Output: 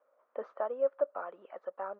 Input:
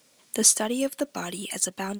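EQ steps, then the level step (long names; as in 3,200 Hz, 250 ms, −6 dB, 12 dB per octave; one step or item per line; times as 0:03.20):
high-pass with resonance 560 Hz, resonance Q 5.5
transistor ladder low-pass 1,400 Hz, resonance 65%
high-frequency loss of the air 140 metres
−3.5 dB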